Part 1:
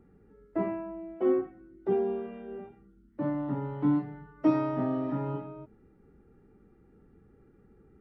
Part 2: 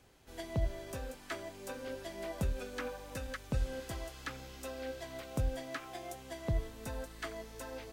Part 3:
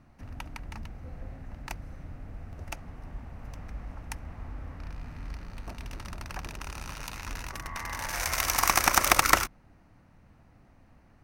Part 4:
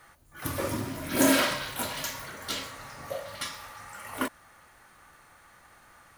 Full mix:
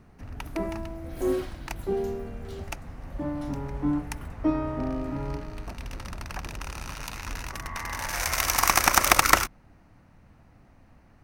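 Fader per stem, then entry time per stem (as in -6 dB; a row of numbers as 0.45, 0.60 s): -1.0, -18.0, +2.5, -20.0 dB; 0.00, 1.15, 0.00, 0.00 s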